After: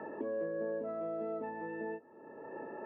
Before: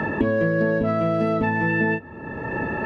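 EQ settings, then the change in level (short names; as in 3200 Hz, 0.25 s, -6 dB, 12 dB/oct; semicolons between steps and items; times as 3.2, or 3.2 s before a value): ladder band-pass 570 Hz, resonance 20%; -3.5 dB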